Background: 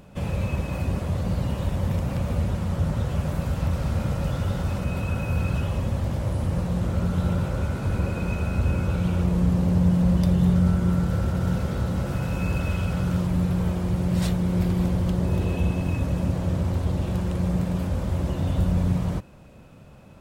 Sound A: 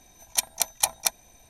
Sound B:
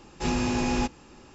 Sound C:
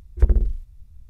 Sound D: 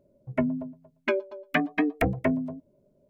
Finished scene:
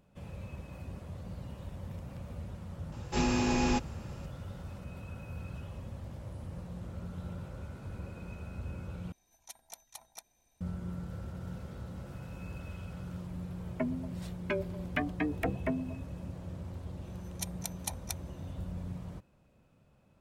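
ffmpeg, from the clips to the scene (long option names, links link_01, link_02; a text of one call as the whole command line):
ffmpeg -i bed.wav -i cue0.wav -i cue1.wav -i cue2.wav -i cue3.wav -filter_complex "[1:a]asplit=2[link_01][link_02];[0:a]volume=-17.5dB[link_03];[link_01]acompressor=threshold=-24dB:ratio=6:attack=3.2:release=140:knee=1:detection=peak[link_04];[link_03]asplit=2[link_05][link_06];[link_05]atrim=end=9.124[link_07];[link_04]atrim=end=1.49,asetpts=PTS-STARTPTS,volume=-17.5dB[link_08];[link_06]atrim=start=10.606[link_09];[2:a]atrim=end=1.34,asetpts=PTS-STARTPTS,volume=-2.5dB,afade=type=in:duration=0.004:curve=hsin,afade=type=out:start_time=1.336:duration=0.004:curve=hsin,adelay=2920[link_10];[4:a]atrim=end=3.09,asetpts=PTS-STARTPTS,volume=-8dB,afade=type=in:duration=0.004:curve=hsin,afade=type=out:start_time=3.086:duration=0.004:curve=hsin,adelay=13420[link_11];[link_02]atrim=end=1.49,asetpts=PTS-STARTPTS,volume=-15dB,afade=type=in:duration=0.004:curve=hsin,afade=type=out:start_time=1.486:duration=0.004:curve=hsin,adelay=17040[link_12];[link_07][link_08]acrossfade=duration=0.004:curve1=hsin:curve2=hsin[link_13];[link_13][link_09]acrossfade=duration=0.004:curve1=hsin:curve2=hsin[link_14];[link_14][link_10][link_11][link_12]amix=inputs=4:normalize=0" out.wav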